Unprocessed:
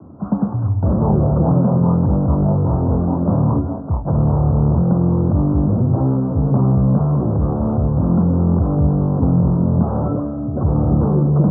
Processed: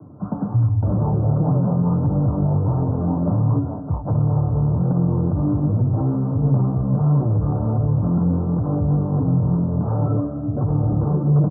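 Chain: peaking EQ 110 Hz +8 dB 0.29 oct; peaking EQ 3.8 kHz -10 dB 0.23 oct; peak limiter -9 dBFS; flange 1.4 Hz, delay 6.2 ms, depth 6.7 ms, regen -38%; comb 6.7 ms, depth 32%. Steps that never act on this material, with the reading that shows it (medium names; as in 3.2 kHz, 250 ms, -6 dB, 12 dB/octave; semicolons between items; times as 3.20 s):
peaking EQ 3.8 kHz: input has nothing above 810 Hz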